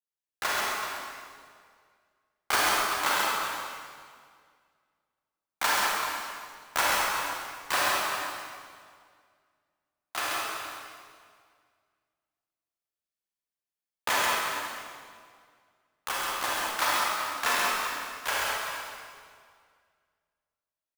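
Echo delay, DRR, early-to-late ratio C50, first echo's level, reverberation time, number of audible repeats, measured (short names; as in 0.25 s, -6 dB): 0.134 s, -7.0 dB, -5.5 dB, -4.0 dB, 2.0 s, 2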